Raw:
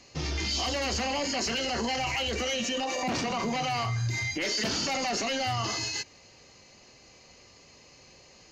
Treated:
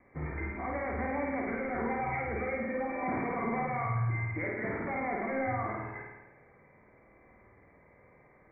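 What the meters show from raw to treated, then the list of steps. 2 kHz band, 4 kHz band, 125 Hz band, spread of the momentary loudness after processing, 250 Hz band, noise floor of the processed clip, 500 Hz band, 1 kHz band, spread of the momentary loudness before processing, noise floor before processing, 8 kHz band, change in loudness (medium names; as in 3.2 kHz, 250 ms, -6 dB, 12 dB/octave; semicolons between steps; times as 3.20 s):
-4.0 dB, under -40 dB, -1.5 dB, 5 LU, -1.5 dB, -61 dBFS, -1.5 dB, -2.5 dB, 2 LU, -55 dBFS, under -40 dB, -5.0 dB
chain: Chebyshev low-pass 2.3 kHz, order 10; flutter echo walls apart 9 m, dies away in 1.1 s; trim -4.5 dB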